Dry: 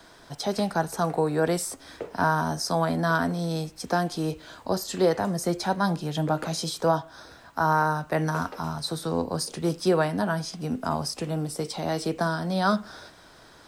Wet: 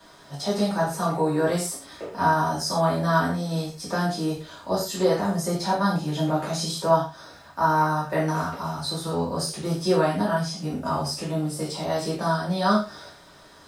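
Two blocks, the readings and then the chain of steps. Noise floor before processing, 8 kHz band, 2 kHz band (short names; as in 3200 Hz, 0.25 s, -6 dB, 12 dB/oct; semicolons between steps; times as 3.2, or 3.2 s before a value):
-52 dBFS, +1.5 dB, -0.5 dB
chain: non-linear reverb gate 0.15 s falling, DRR -7.5 dB; crackle 550/s -53 dBFS; gain -6.5 dB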